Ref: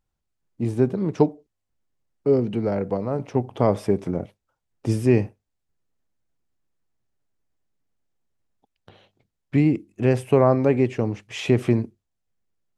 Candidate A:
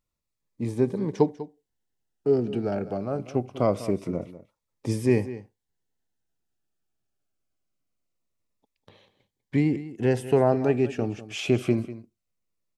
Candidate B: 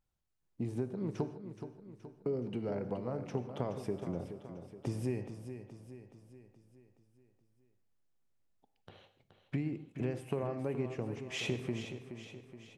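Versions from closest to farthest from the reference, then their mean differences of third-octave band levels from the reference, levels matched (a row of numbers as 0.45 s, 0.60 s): A, B; 3.0 dB, 6.0 dB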